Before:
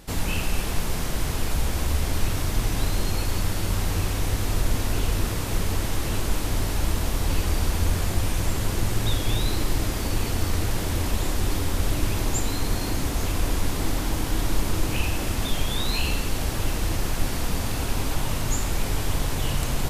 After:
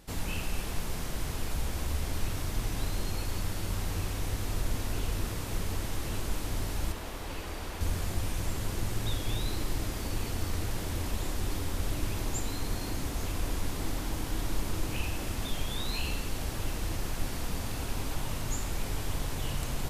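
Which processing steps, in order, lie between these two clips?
0:06.92–0:07.81: bass and treble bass −9 dB, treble −6 dB
level −8 dB

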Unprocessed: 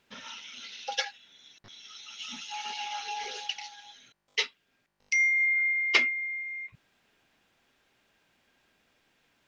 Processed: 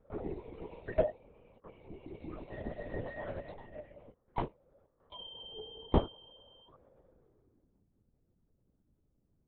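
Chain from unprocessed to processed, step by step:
neighbouring bands swapped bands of 1,000 Hz
low-pass filter sweep 490 Hz → 170 Hz, 0:07.03–0:07.88
linear-prediction vocoder at 8 kHz whisper
level +8 dB

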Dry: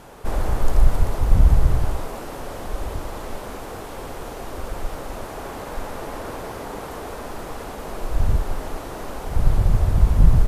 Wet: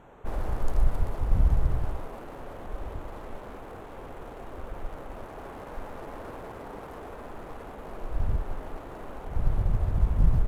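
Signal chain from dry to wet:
adaptive Wiener filter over 9 samples
level −8 dB

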